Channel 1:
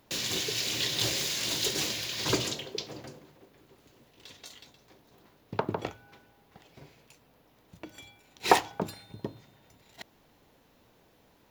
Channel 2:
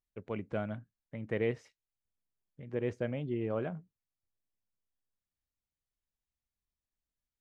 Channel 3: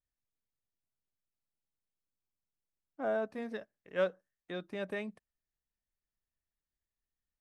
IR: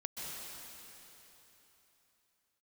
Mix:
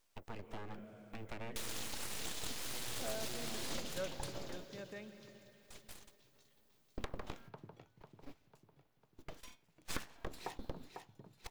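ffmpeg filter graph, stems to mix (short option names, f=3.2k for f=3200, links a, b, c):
-filter_complex "[0:a]agate=range=-12dB:threshold=-50dB:ratio=16:detection=peak,equalizer=f=140:t=o:w=0.77:g=10,adelay=1450,volume=-3.5dB,asplit=2[a][b];[b]volume=-21.5dB[c];[1:a]aemphasis=mode=production:type=bsi,acrossover=split=220[d][e];[e]acompressor=threshold=-47dB:ratio=5[f];[d][f]amix=inputs=2:normalize=0,volume=2dB,asplit=2[g][h];[h]volume=-9dB[i];[2:a]volume=-14dB,asplit=2[j][k];[k]volume=-5.5dB[l];[a][g]amix=inputs=2:normalize=0,aeval=exprs='abs(val(0))':c=same,acompressor=threshold=-37dB:ratio=8,volume=0dB[m];[3:a]atrim=start_sample=2205[n];[i][l]amix=inputs=2:normalize=0[o];[o][n]afir=irnorm=-1:irlink=0[p];[c]aecho=0:1:498|996|1494|1992|2490|2988|3486:1|0.47|0.221|0.104|0.0488|0.0229|0.0108[q];[j][m][p][q]amix=inputs=4:normalize=0"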